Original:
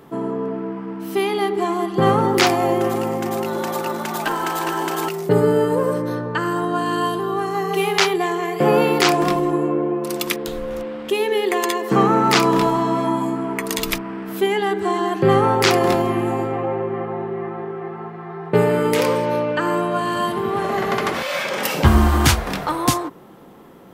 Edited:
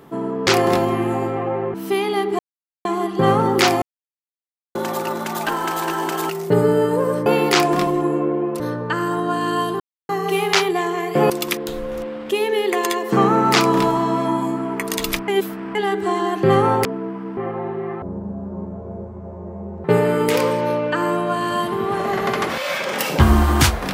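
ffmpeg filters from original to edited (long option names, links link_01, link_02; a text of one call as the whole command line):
ffmpeg -i in.wav -filter_complex "[0:a]asplit=17[link_01][link_02][link_03][link_04][link_05][link_06][link_07][link_08][link_09][link_10][link_11][link_12][link_13][link_14][link_15][link_16][link_17];[link_01]atrim=end=0.472[link_18];[link_02]atrim=start=15.638:end=16.912[link_19];[link_03]atrim=start=0.988:end=1.64,asetpts=PTS-STARTPTS,afade=type=out:start_time=0.648:duration=0.004:curve=hsin,apad=pad_dur=0.46[link_20];[link_04]atrim=start=1.64:end=2.61,asetpts=PTS-STARTPTS,afade=type=in:duration=0.004:curve=hsin,afade=type=out:start_time=0.966:duration=0.004:curve=hsin[link_21];[link_05]atrim=start=2.61:end=3.54,asetpts=PTS-STARTPTS,volume=0[link_22];[link_06]atrim=start=3.54:end=6.052,asetpts=PTS-STARTPTS,afade=type=in:duration=0.004:curve=hsin[link_23];[link_07]atrim=start=8.748:end=10.092[link_24];[link_08]atrim=start=6.048:end=7.25,asetpts=PTS-STARTPTS,afade=type=out:start_time=1.198:duration=0.004:curve=hsin[link_25];[link_09]atrim=start=7.25:end=7.54,asetpts=PTS-STARTPTS,volume=0[link_26];[link_10]atrim=start=7.54:end=8.752,asetpts=PTS-STARTPTS,afade=type=in:duration=0.004:curve=hsin[link_27];[link_11]atrim=start=10.088:end=14.072[link_28];[link_12]atrim=start=14.068:end=14.542,asetpts=PTS-STARTPTS,areverse[link_29];[link_13]atrim=start=14.538:end=15.642[link_30];[link_14]atrim=start=0.468:end=0.992[link_31];[link_15]atrim=start=16.908:end=17.564[link_32];[link_16]atrim=start=17.56:end=18.49,asetpts=PTS-STARTPTS,asetrate=22491,aresample=44100[link_33];[link_17]atrim=start=18.486[link_34];[link_18][link_19]acrossfade=duration=0.004:curve1=hsin:curve2=hsin[link_35];[link_20][link_21][link_22][link_23]concat=n=4:v=0:a=1[link_36];[link_35][link_36]acrossfade=duration=0.004:curve1=hsin:curve2=hsin[link_37];[link_37][link_24]acrossfade=duration=0.004:curve1=hsin:curve2=hsin[link_38];[link_25][link_26][link_27]concat=n=3:v=0:a=1[link_39];[link_38][link_39]acrossfade=duration=0.004:curve1=hsin:curve2=hsin[link_40];[link_40][link_28]acrossfade=duration=0.004:curve1=hsin:curve2=hsin[link_41];[link_41][link_29]acrossfade=duration=0.004:curve1=hsin:curve2=hsin[link_42];[link_42][link_30]acrossfade=duration=0.004:curve1=hsin:curve2=hsin[link_43];[link_43][link_31]acrossfade=duration=0.004:curve1=hsin:curve2=hsin[link_44];[link_44][link_32]acrossfade=duration=0.004:curve1=hsin:curve2=hsin[link_45];[link_45][link_33]acrossfade=duration=0.004:curve1=hsin:curve2=hsin[link_46];[link_46][link_34]acrossfade=duration=0.004:curve1=hsin:curve2=hsin" out.wav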